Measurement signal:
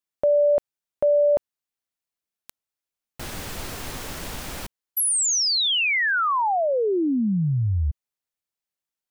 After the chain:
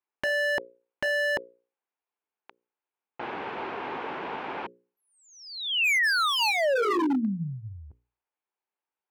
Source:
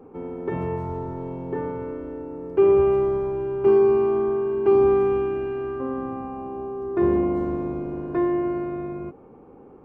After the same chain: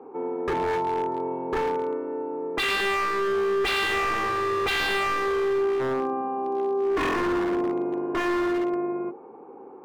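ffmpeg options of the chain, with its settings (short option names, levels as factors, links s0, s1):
-af "highpass=370,equalizer=f=390:t=q:w=4:g=4,equalizer=f=600:t=q:w=4:g=-5,equalizer=f=880:t=q:w=4:g=5,equalizer=f=1300:t=q:w=4:g=-3,equalizer=f=1900:t=q:w=4:g=-6,lowpass=f=2300:w=0.5412,lowpass=f=2300:w=1.3066,bandreject=f=60:t=h:w=6,bandreject=f=120:t=h:w=6,bandreject=f=180:t=h:w=6,bandreject=f=240:t=h:w=6,bandreject=f=300:t=h:w=6,bandreject=f=360:t=h:w=6,bandreject=f=420:t=h:w=6,bandreject=f=480:t=h:w=6,bandreject=f=540:t=h:w=6,aeval=exprs='0.0531*(abs(mod(val(0)/0.0531+3,4)-2)-1)':c=same,volume=1.88"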